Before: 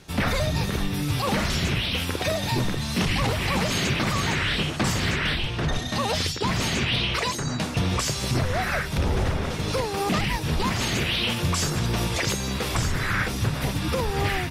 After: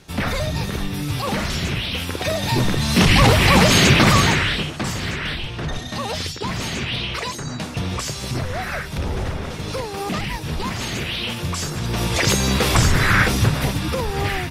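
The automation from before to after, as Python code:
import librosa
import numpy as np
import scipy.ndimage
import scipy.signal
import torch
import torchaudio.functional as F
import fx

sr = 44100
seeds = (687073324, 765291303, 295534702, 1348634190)

y = fx.gain(x, sr, db=fx.line((2.11, 1.0), (3.2, 11.0), (4.15, 11.0), (4.72, -1.0), (11.77, -1.0), (12.37, 9.0), (13.32, 9.0), (13.92, 2.0)))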